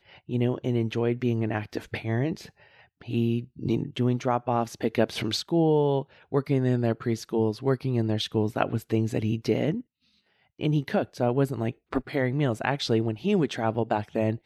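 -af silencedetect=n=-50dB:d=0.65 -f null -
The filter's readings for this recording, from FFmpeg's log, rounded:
silence_start: 9.82
silence_end: 10.59 | silence_duration: 0.78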